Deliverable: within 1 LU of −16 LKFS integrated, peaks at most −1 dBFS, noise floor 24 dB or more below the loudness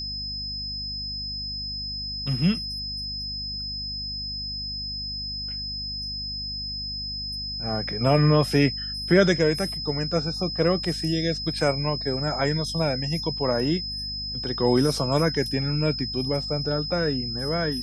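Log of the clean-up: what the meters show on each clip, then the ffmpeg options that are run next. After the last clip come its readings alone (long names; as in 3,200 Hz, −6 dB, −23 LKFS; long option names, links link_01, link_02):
mains hum 50 Hz; hum harmonics up to 250 Hz; level of the hum −37 dBFS; interfering tone 5,100 Hz; level of the tone −30 dBFS; integrated loudness −25.5 LKFS; sample peak −6.5 dBFS; target loudness −16.0 LKFS
→ -af "bandreject=frequency=50:width_type=h:width=4,bandreject=frequency=100:width_type=h:width=4,bandreject=frequency=150:width_type=h:width=4,bandreject=frequency=200:width_type=h:width=4,bandreject=frequency=250:width_type=h:width=4"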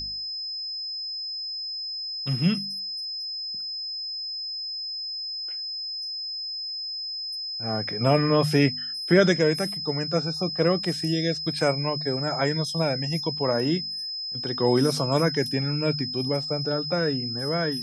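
mains hum none found; interfering tone 5,100 Hz; level of the tone −30 dBFS
→ -af "bandreject=frequency=5100:width=30"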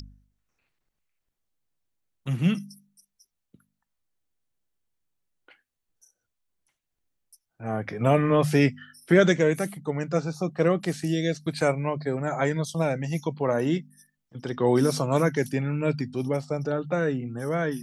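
interfering tone none found; integrated loudness −25.5 LKFS; sample peak −7.0 dBFS; target loudness −16.0 LKFS
→ -af "volume=9.5dB,alimiter=limit=-1dB:level=0:latency=1"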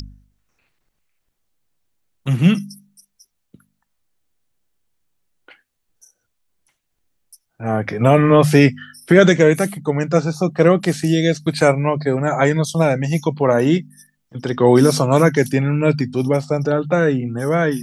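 integrated loudness −16.5 LKFS; sample peak −1.0 dBFS; background noise floor −72 dBFS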